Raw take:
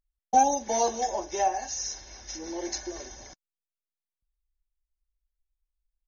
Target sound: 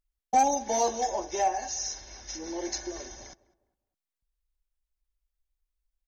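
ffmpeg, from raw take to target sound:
-filter_complex "[0:a]asoftclip=type=tanh:threshold=-14dB,asplit=2[a][b];[b]adelay=203,lowpass=f=1.4k:p=1,volume=-20dB,asplit=2[c][d];[d]adelay=203,lowpass=f=1.4k:p=1,volume=0.39,asplit=2[e][f];[f]adelay=203,lowpass=f=1.4k:p=1,volume=0.39[g];[a][c][e][g]amix=inputs=4:normalize=0"

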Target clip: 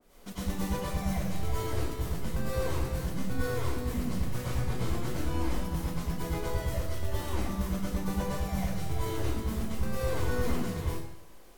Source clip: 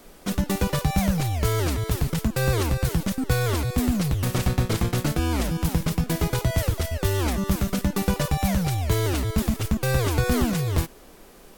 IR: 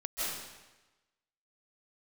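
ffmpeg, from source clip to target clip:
-filter_complex "[1:a]atrim=start_sample=2205,asetrate=70560,aresample=44100[a];[0:a][a]afir=irnorm=-1:irlink=0,adynamicequalizer=threshold=0.00794:dfrequency=1900:dqfactor=0.7:tfrequency=1900:tqfactor=0.7:attack=5:release=100:ratio=0.375:range=2:mode=cutabove:tftype=highshelf,volume=-8.5dB"

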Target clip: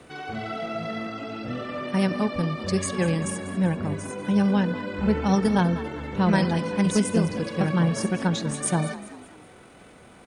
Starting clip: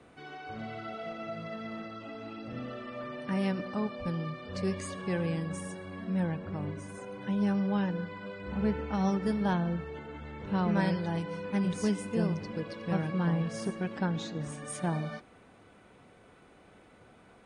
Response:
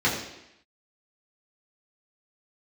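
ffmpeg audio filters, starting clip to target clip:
-filter_complex "[0:a]aemphasis=mode=production:type=cd,atempo=1.7,asplit=5[a][b][c][d][e];[b]adelay=196,afreqshift=50,volume=-15dB[f];[c]adelay=392,afreqshift=100,volume=-22.1dB[g];[d]adelay=588,afreqshift=150,volume=-29.3dB[h];[e]adelay=784,afreqshift=200,volume=-36.4dB[i];[a][f][g][h][i]amix=inputs=5:normalize=0,volume=8.5dB"

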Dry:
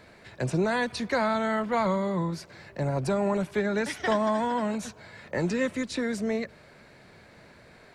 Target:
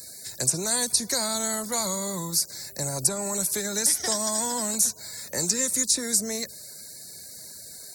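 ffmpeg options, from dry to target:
-filter_complex "[0:a]aexciter=amount=11.5:drive=4.9:freq=4.4k,aemphasis=mode=production:type=50fm,acrossover=split=940|2900[a][b][c];[a]acompressor=threshold=-28dB:ratio=4[d];[b]acompressor=threshold=-36dB:ratio=4[e];[c]acompressor=threshold=-19dB:ratio=4[f];[d][e][f]amix=inputs=3:normalize=0,afftfilt=real='re*gte(hypot(re,im),0.00447)':imag='im*gte(hypot(re,im),0.00447)':win_size=1024:overlap=0.75,volume=-2dB"

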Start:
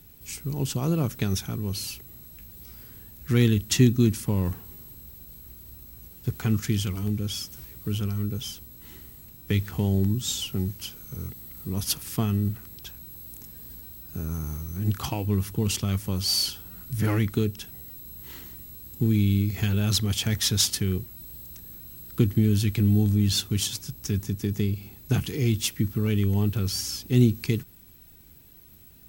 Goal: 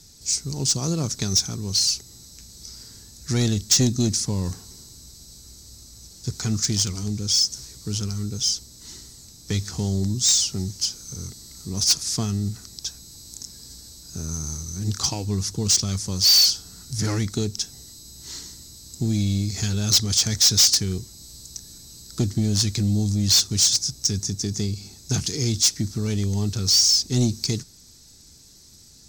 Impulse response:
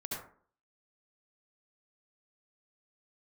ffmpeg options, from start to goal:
-af "aexciter=amount=10:drive=8.1:freq=4.4k,lowpass=f=5.9k:w=0.5412,lowpass=f=5.9k:w=1.3066,asoftclip=type=tanh:threshold=-12dB"

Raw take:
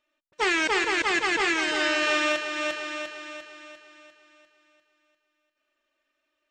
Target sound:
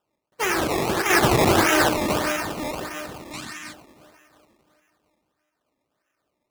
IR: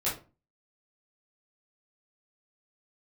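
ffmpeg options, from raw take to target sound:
-filter_complex "[0:a]asplit=2[a][b];[1:a]atrim=start_sample=2205,adelay=65[c];[b][c]afir=irnorm=-1:irlink=0,volume=-11dB[d];[a][d]amix=inputs=2:normalize=0,acrusher=samples=20:mix=1:aa=0.000001:lfo=1:lforange=20:lforate=1.6,highpass=f=80:p=1,asettb=1/sr,asplit=3[e][f][g];[e]atrim=end=1.104[h];[f]atrim=start=1.1:end=1.89,asetpts=PTS-STARTPTS,afade=t=in:d=0.004:c=qsin,afade=t=out:st=0.786:d=0.004:c=qsin,acontrast=65[i];[g]atrim=start=1.886[j];[h][i]acrossfade=d=0.004:c1=hsin:c2=qsin[k];[k][j]acrossfade=d=0.004:c1=qsin:c2=hsin,asplit=3[l][m][n];[l]afade=t=out:st=3.32:d=0.02[o];[m]equalizer=f=125:t=o:w=1:g=5,equalizer=f=250:t=o:w=1:g=12,equalizer=f=500:t=o:w=1:g=-12,equalizer=f=1k:t=o:w=1:g=5,equalizer=f=2k:t=o:w=1:g=8,equalizer=f=4k:t=o:w=1:g=9,equalizer=f=8k:t=o:w=1:g=12,afade=t=in:st=3.32:d=0.02,afade=t=out:st=3.72:d=0.02[p];[n]afade=t=in:st=3.72:d=0.02[q];[o][p][q]amix=inputs=3:normalize=0"

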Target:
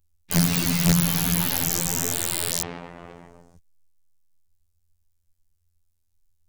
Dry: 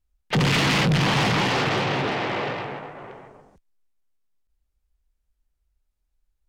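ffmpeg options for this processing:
-af "afftfilt=real='hypot(re,im)*cos(PI*b)':imag='0':win_size=2048:overlap=0.75,aeval=exprs='(mod(7.08*val(0)+1,2)-1)/7.08':c=same,bass=f=250:g=10,treble=f=4k:g=13,volume=-1dB"

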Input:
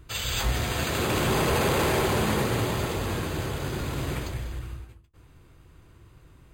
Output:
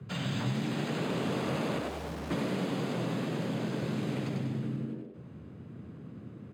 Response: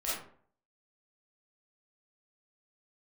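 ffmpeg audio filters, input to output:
-filter_complex "[0:a]aemphasis=mode=reproduction:type=75fm,asplit=3[a][b][c];[a]afade=t=out:st=1.78:d=0.02[d];[b]aeval=exprs='(tanh(126*val(0)+0.55)-tanh(0.55))/126':c=same,afade=t=in:st=1.78:d=0.02,afade=t=out:st=2.3:d=0.02[e];[c]afade=t=in:st=2.3:d=0.02[f];[d][e][f]amix=inputs=3:normalize=0,lowshelf=f=410:g=6.5,asplit=6[g][h][i][j][k][l];[h]adelay=95,afreqshift=89,volume=-4dB[m];[i]adelay=190,afreqshift=178,volume=-12.4dB[n];[j]adelay=285,afreqshift=267,volume=-20.8dB[o];[k]adelay=380,afreqshift=356,volume=-29.2dB[p];[l]adelay=475,afreqshift=445,volume=-37.6dB[q];[g][m][n][o][p][q]amix=inputs=6:normalize=0,afreqshift=73,acrossover=split=120|2400[r][s][t];[r]acompressor=threshold=-41dB:ratio=4[u];[s]acompressor=threshold=-31dB:ratio=4[v];[t]acompressor=threshold=-42dB:ratio=4[w];[u][v][w]amix=inputs=3:normalize=0,volume=-2dB"

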